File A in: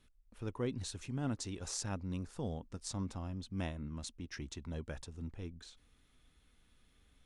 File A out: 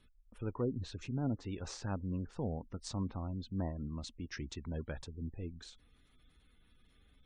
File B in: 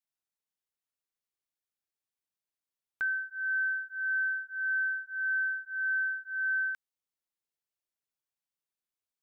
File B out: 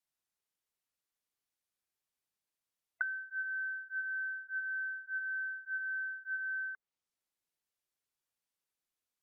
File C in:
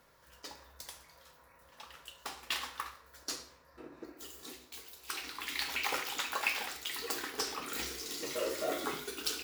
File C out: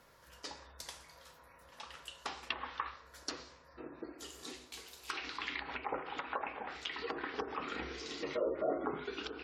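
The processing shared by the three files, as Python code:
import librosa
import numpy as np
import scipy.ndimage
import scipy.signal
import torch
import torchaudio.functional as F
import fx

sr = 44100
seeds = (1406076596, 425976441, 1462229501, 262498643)

y = fx.env_lowpass_down(x, sr, base_hz=910.0, full_db=-32.0)
y = fx.spec_gate(y, sr, threshold_db=-30, keep='strong')
y = y * 10.0 ** (2.0 / 20.0)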